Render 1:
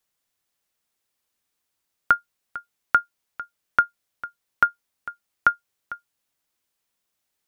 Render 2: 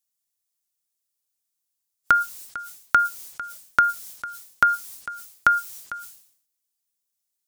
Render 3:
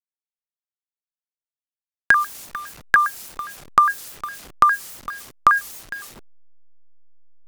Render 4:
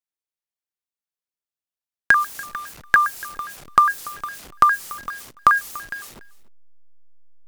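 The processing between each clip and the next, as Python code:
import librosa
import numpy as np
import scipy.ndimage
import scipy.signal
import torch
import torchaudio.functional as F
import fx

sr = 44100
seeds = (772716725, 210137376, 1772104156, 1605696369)

y1 = fx.noise_reduce_blind(x, sr, reduce_db=15)
y1 = fx.bass_treble(y1, sr, bass_db=3, treble_db=15)
y1 = fx.sustainer(y1, sr, db_per_s=91.0)
y2 = fx.delta_hold(y1, sr, step_db=-39.0)
y2 = fx.vibrato_shape(y2, sr, shape='square', rate_hz=4.9, depth_cents=250.0)
y2 = y2 * librosa.db_to_amplitude(3.0)
y3 = fx.quant_float(y2, sr, bits=4)
y3 = y3 + 10.0 ** (-20.5 / 20.0) * np.pad(y3, (int(288 * sr / 1000.0), 0))[:len(y3)]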